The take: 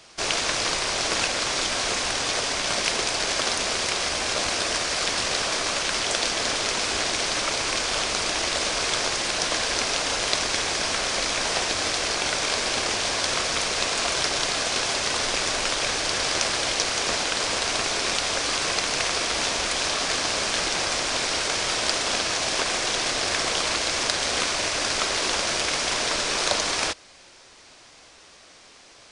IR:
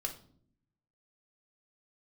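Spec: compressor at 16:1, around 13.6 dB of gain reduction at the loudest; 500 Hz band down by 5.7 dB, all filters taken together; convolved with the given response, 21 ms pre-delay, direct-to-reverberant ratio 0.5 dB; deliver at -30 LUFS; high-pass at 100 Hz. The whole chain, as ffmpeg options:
-filter_complex "[0:a]highpass=100,equalizer=f=500:t=o:g=-7.5,acompressor=threshold=-33dB:ratio=16,asplit=2[a][b];[1:a]atrim=start_sample=2205,adelay=21[c];[b][c]afir=irnorm=-1:irlink=0,volume=-1.5dB[d];[a][d]amix=inputs=2:normalize=0,volume=2dB"

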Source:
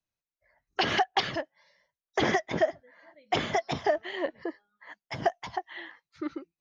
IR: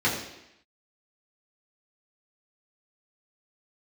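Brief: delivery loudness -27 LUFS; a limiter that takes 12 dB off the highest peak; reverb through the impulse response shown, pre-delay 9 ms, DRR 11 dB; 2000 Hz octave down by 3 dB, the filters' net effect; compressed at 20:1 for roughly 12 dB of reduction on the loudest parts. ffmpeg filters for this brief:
-filter_complex "[0:a]equalizer=f=2k:t=o:g=-3.5,acompressor=threshold=-32dB:ratio=20,alimiter=level_in=6dB:limit=-24dB:level=0:latency=1,volume=-6dB,asplit=2[a][b];[1:a]atrim=start_sample=2205,adelay=9[c];[b][c]afir=irnorm=-1:irlink=0,volume=-25dB[d];[a][d]amix=inputs=2:normalize=0,volume=15.5dB"

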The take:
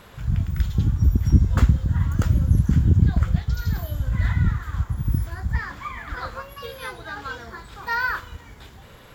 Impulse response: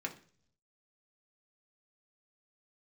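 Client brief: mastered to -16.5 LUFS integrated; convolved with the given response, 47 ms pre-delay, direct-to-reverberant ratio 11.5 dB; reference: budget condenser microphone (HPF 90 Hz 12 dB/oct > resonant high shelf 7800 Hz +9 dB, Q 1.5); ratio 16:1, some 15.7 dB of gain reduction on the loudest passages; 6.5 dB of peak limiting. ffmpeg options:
-filter_complex "[0:a]acompressor=threshold=-26dB:ratio=16,alimiter=limit=-24dB:level=0:latency=1,asplit=2[a][b];[1:a]atrim=start_sample=2205,adelay=47[c];[b][c]afir=irnorm=-1:irlink=0,volume=-13dB[d];[a][d]amix=inputs=2:normalize=0,highpass=90,highshelf=f=7.8k:t=q:w=1.5:g=9,volume=20dB"

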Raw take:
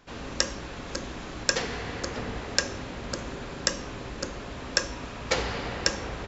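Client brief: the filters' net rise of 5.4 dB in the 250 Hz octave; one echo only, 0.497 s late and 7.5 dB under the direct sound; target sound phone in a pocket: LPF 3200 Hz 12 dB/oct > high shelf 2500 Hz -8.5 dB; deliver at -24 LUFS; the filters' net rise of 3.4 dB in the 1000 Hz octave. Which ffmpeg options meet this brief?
-af "lowpass=3.2k,equalizer=f=250:t=o:g=6.5,equalizer=f=1k:t=o:g=5.5,highshelf=f=2.5k:g=-8.5,aecho=1:1:497:0.422,volume=8dB"

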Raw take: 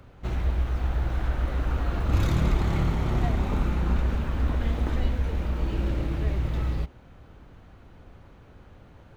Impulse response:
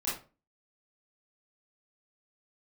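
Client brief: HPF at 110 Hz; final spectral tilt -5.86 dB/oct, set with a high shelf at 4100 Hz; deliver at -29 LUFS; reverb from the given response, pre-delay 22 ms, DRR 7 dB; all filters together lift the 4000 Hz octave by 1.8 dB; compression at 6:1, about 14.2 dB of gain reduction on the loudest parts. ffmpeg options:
-filter_complex "[0:a]highpass=110,equalizer=f=4k:t=o:g=6,highshelf=f=4.1k:g=-7,acompressor=threshold=-39dB:ratio=6,asplit=2[a][b];[1:a]atrim=start_sample=2205,adelay=22[c];[b][c]afir=irnorm=-1:irlink=0,volume=-12.5dB[d];[a][d]amix=inputs=2:normalize=0,volume=13.5dB"

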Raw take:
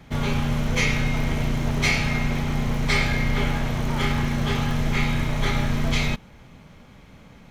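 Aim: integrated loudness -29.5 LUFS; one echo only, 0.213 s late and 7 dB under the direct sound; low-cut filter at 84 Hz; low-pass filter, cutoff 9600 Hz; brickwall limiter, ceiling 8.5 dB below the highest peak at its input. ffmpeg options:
-af "highpass=84,lowpass=9.6k,alimiter=limit=-18dB:level=0:latency=1,aecho=1:1:213:0.447,volume=-2dB"

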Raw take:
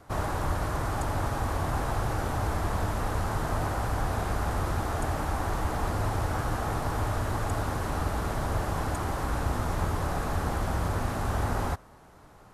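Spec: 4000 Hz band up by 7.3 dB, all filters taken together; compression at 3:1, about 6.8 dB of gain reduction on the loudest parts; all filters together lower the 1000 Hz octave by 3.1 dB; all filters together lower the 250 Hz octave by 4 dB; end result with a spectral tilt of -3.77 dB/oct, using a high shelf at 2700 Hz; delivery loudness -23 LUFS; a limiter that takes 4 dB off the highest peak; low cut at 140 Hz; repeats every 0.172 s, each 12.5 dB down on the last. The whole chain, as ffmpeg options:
-af "highpass=140,equalizer=f=250:t=o:g=-4.5,equalizer=f=1k:t=o:g=-5,highshelf=f=2.7k:g=7,equalizer=f=4k:t=o:g=3.5,acompressor=threshold=-39dB:ratio=3,alimiter=level_in=7.5dB:limit=-24dB:level=0:latency=1,volume=-7.5dB,aecho=1:1:172|344|516:0.237|0.0569|0.0137,volume=17.5dB"

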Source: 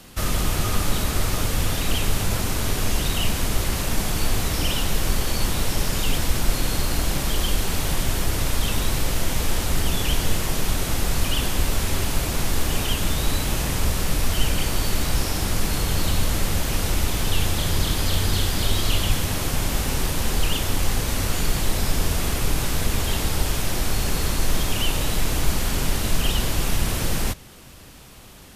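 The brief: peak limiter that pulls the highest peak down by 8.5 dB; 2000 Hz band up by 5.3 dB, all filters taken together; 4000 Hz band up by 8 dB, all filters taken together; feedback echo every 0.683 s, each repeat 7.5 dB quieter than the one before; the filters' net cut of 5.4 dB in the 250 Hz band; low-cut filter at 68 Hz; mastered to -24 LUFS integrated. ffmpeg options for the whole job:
-af "highpass=68,equalizer=f=250:t=o:g=-8,equalizer=f=2k:t=o:g=4,equalizer=f=4k:t=o:g=9,alimiter=limit=-16dB:level=0:latency=1,aecho=1:1:683|1366|2049|2732|3415:0.422|0.177|0.0744|0.0312|0.0131,volume=-1dB"

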